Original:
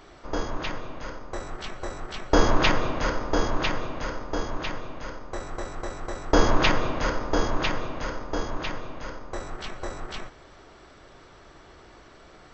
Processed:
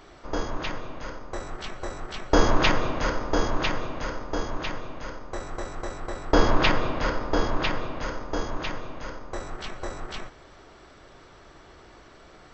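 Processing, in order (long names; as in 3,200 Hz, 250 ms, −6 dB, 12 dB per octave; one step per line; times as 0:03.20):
0:05.97–0:08.02: parametric band 6,300 Hz −6 dB 0.29 octaves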